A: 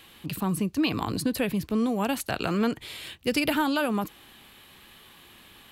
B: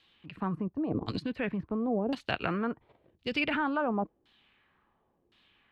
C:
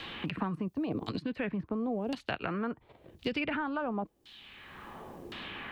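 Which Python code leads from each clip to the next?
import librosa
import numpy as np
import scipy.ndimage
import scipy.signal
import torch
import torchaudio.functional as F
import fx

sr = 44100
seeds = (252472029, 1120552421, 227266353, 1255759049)

y1 = fx.level_steps(x, sr, step_db=10)
y1 = fx.filter_lfo_lowpass(y1, sr, shape='saw_down', hz=0.94, low_hz=410.0, high_hz=4600.0, q=1.9)
y1 = fx.upward_expand(y1, sr, threshold_db=-45.0, expansion=1.5)
y2 = fx.band_squash(y1, sr, depth_pct=100)
y2 = y2 * 10.0 ** (-2.5 / 20.0)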